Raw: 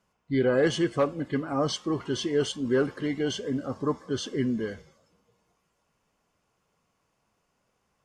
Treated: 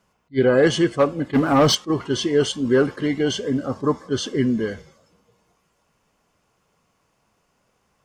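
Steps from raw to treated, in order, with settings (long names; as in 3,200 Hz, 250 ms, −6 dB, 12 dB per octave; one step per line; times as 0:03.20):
0:01.33–0:01.75: leveller curve on the samples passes 2
level that may rise only so fast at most 450 dB per second
level +7 dB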